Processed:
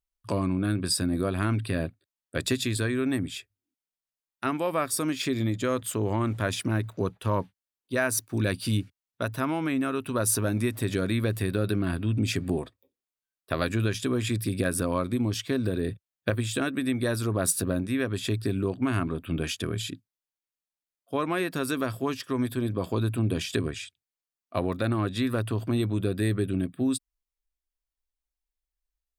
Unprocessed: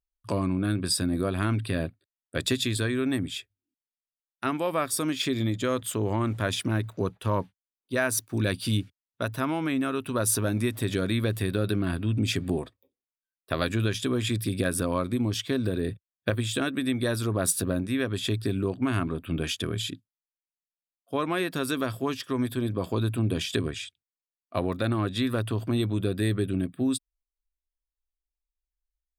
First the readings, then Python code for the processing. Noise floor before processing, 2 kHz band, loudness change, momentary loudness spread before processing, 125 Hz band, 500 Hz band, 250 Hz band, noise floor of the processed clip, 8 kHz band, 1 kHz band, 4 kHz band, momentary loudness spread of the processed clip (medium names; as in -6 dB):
under -85 dBFS, 0.0 dB, 0.0 dB, 6 LU, 0.0 dB, 0.0 dB, 0.0 dB, under -85 dBFS, 0.0 dB, 0.0 dB, -2.5 dB, 6 LU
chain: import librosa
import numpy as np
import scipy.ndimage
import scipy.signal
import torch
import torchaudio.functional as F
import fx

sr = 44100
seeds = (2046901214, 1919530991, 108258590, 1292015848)

y = fx.dynamic_eq(x, sr, hz=3400.0, q=4.6, threshold_db=-49.0, ratio=4.0, max_db=-5)